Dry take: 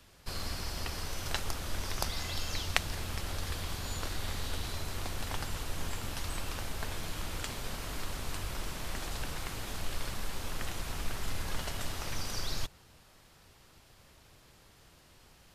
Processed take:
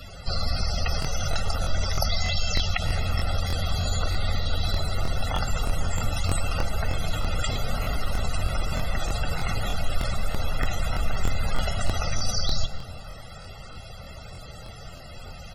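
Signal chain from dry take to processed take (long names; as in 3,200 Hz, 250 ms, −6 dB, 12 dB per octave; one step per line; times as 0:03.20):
high-shelf EQ 6,800 Hz +5 dB
comb filter 1.5 ms, depth 42%
in parallel at −2 dB: compressor whose output falls as the input rises −42 dBFS, ratio −1
on the sum: spectral peaks only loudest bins 64
on a send at −13 dB: convolution reverb RT60 3.1 s, pre-delay 75 ms
on the sum: regular buffer underruns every 0.31 s, samples 1,024, repeat, from 0:01.00
boost into a limiter +16 dB
level −8.5 dB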